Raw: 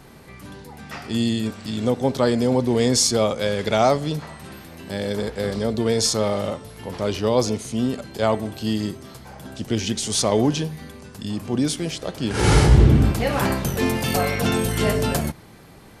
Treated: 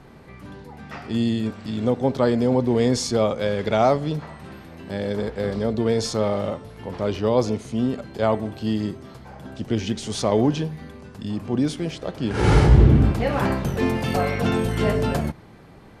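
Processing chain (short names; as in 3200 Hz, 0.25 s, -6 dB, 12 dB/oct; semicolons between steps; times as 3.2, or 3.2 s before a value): LPF 2100 Hz 6 dB/oct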